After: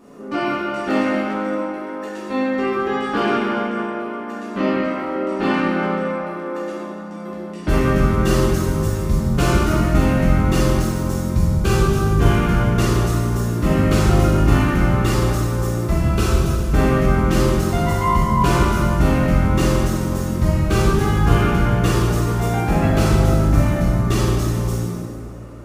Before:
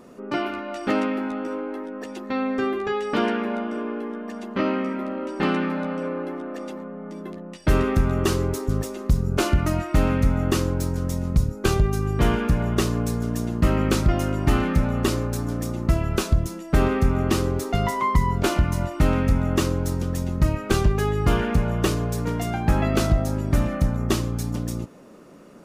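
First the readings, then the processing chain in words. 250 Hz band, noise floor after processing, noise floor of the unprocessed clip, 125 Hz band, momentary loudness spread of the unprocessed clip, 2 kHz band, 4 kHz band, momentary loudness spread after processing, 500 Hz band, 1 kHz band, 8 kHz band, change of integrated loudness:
+5.0 dB, −31 dBFS, −37 dBFS, +6.0 dB, 9 LU, +6.0 dB, +3.5 dB, 10 LU, +5.0 dB, +6.0 dB, +4.0 dB, +5.0 dB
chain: dense smooth reverb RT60 2.6 s, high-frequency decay 0.6×, DRR −9 dB
level −4 dB

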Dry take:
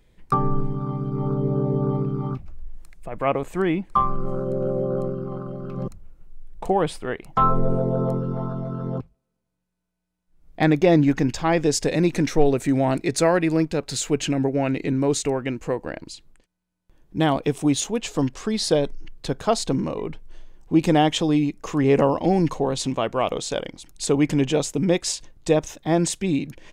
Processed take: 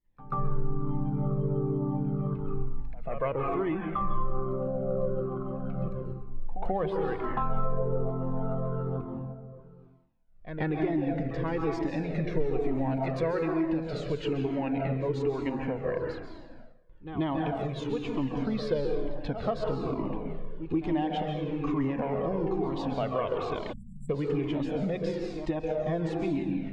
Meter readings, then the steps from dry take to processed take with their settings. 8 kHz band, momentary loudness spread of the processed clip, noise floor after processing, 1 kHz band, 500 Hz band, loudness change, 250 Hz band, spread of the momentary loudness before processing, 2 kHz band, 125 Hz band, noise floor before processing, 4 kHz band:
below −30 dB, 8 LU, −49 dBFS, −8.5 dB, −7.5 dB, −8.5 dB, −8.0 dB, 12 LU, −10.0 dB, −6.5 dB, −78 dBFS, −15.5 dB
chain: fade in at the beginning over 0.69 s
echo ahead of the sound 136 ms −17 dB
in parallel at −10 dB: soft clipping −14.5 dBFS, distortion −14 dB
on the sum: dense smooth reverb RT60 1.2 s, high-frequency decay 0.6×, pre-delay 120 ms, DRR 2 dB
time-frequency box erased 0:23.73–0:24.10, 250–7,300 Hz
reversed playback
upward compression, threshold −35 dBFS
reversed playback
mains-hum notches 60/120/180 Hz
downward compressor, threshold −20 dBFS, peak gain reduction 12 dB
high-frequency loss of the air 360 metres
flanger whose copies keep moving one way falling 1.1 Hz

